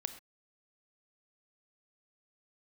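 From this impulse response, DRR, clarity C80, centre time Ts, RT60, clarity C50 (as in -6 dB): 9.5 dB, 13.5 dB, 8 ms, no single decay rate, 11.5 dB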